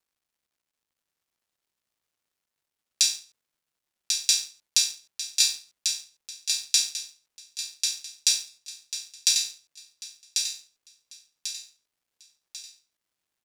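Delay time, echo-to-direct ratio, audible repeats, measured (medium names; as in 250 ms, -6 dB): 1093 ms, -4.0 dB, 5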